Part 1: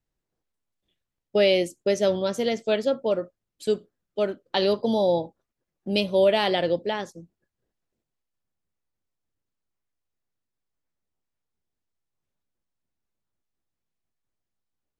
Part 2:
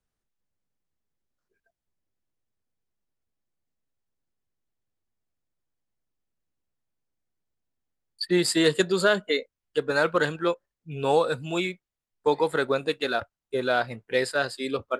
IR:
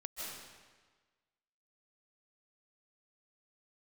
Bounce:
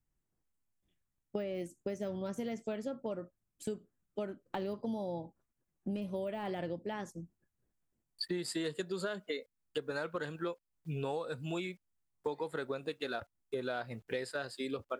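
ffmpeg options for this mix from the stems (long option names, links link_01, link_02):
-filter_complex "[0:a]deesser=0.95,equalizer=frequency=500:width_type=o:width=1:gain=-7,equalizer=frequency=4000:width_type=o:width=1:gain=-11,equalizer=frequency=8000:width_type=o:width=1:gain=4,volume=-3dB[link_01];[1:a]acrusher=bits=10:mix=0:aa=0.000001,volume=-2.5dB[link_02];[link_01][link_02]amix=inputs=2:normalize=0,lowshelf=frequency=480:gain=4,acompressor=threshold=-35dB:ratio=6"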